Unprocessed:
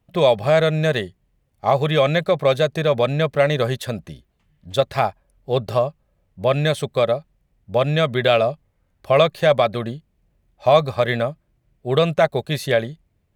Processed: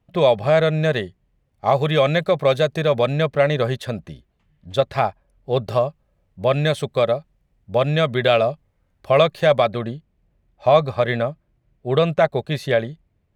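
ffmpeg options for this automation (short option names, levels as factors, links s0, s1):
-af "asetnsamples=n=441:p=0,asendcmd='1.65 lowpass f 9900;3.26 lowpass f 4100;5.57 lowpass f 7700;9.69 lowpass f 3400',lowpass=f=4300:p=1"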